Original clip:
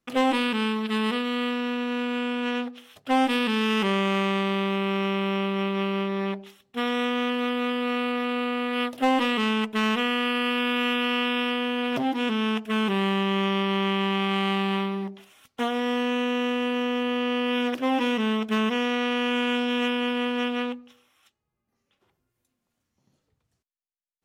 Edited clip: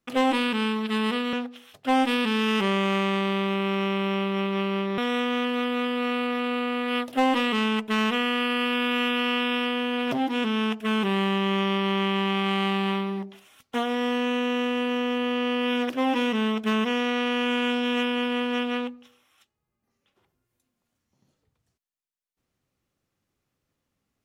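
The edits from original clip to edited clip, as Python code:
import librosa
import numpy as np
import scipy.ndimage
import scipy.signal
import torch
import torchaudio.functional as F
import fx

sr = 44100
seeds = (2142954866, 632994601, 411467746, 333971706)

y = fx.edit(x, sr, fx.cut(start_s=1.33, length_s=1.22),
    fx.cut(start_s=6.2, length_s=0.63), tone=tone)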